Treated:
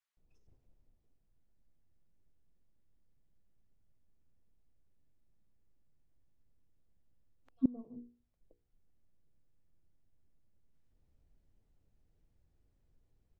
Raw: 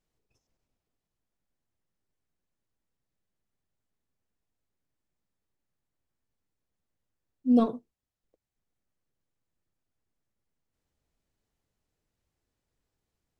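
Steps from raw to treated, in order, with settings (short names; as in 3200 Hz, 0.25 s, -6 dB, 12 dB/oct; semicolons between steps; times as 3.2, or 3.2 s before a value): tilt -3 dB/oct; notches 60/120/180/240/300/360/420/480 Hz; flipped gate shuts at -17 dBFS, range -30 dB; bands offset in time highs, lows 0.17 s, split 1100 Hz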